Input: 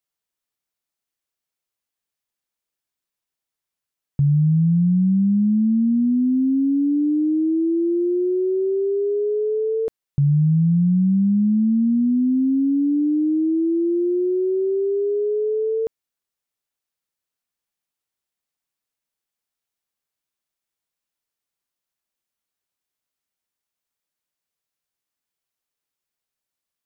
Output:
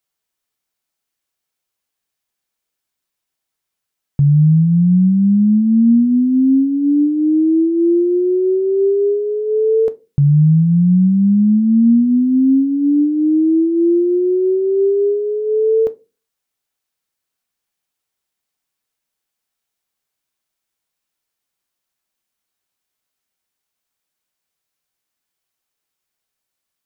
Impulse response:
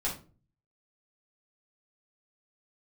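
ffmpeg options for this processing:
-filter_complex "[0:a]asplit=2[link_01][link_02];[link_02]highpass=frequency=430:poles=1[link_03];[1:a]atrim=start_sample=2205,asetrate=70560,aresample=44100[link_04];[link_03][link_04]afir=irnorm=-1:irlink=0,volume=-10dB[link_05];[link_01][link_05]amix=inputs=2:normalize=0,volume=5dB"

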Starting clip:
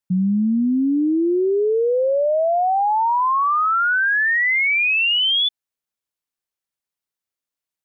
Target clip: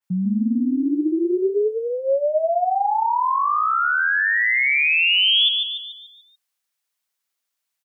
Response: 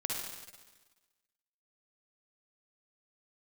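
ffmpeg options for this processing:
-filter_complex "[0:a]highpass=180,equalizer=frequency=300:width=0.68:gain=-10.5,alimiter=level_in=1.5dB:limit=-24dB:level=0:latency=1:release=228,volume=-1.5dB,asplit=2[link_01][link_02];[link_02]asplit=6[link_03][link_04][link_05][link_06][link_07][link_08];[link_03]adelay=145,afreqshift=37,volume=-5dB[link_09];[link_04]adelay=290,afreqshift=74,volume=-11.2dB[link_10];[link_05]adelay=435,afreqshift=111,volume=-17.4dB[link_11];[link_06]adelay=580,afreqshift=148,volume=-23.6dB[link_12];[link_07]adelay=725,afreqshift=185,volume=-29.8dB[link_13];[link_08]adelay=870,afreqshift=222,volume=-36dB[link_14];[link_09][link_10][link_11][link_12][link_13][link_14]amix=inputs=6:normalize=0[link_15];[link_01][link_15]amix=inputs=2:normalize=0,adynamicequalizer=threshold=0.00891:dfrequency=3100:dqfactor=0.7:tfrequency=3100:tqfactor=0.7:attack=5:release=100:ratio=0.375:range=3.5:mode=boostabove:tftype=highshelf,volume=7dB"

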